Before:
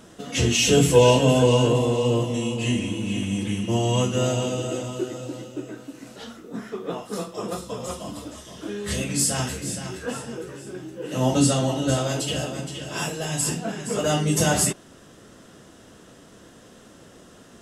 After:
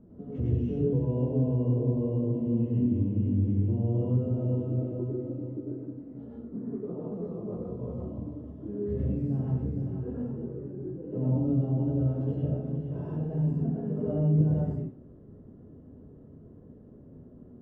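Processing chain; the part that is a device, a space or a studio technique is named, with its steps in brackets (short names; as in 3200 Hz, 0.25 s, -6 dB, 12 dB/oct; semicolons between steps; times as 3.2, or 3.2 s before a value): television next door (compressor 5:1, threshold -23 dBFS, peak gain reduction 12 dB; LPF 290 Hz 12 dB/oct; reverb RT60 0.45 s, pre-delay 88 ms, DRR -4.5 dB); gain -2.5 dB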